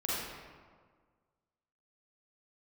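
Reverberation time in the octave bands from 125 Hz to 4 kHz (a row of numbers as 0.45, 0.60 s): 1.8, 1.8, 1.7, 1.6, 1.3, 0.95 s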